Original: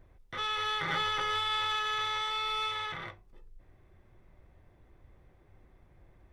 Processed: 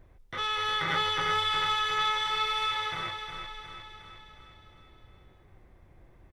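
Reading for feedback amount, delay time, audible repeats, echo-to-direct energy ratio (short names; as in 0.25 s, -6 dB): 57%, 0.359 s, 6, -6.0 dB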